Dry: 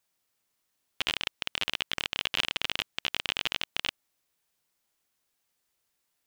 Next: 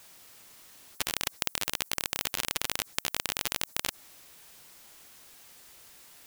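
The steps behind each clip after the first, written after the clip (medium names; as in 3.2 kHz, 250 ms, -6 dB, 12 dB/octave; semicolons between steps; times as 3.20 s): spectrum-flattening compressor 4:1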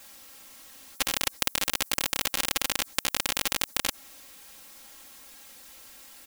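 comb 3.7 ms, depth 91%; trim +1.5 dB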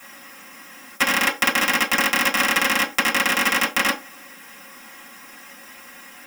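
reverberation RT60 0.30 s, pre-delay 3 ms, DRR -4.5 dB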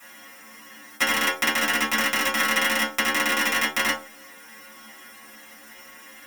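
inharmonic resonator 73 Hz, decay 0.37 s, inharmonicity 0.002; trim +6.5 dB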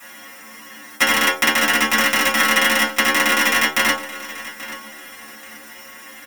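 feedback delay 833 ms, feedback 28%, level -16 dB; trim +6 dB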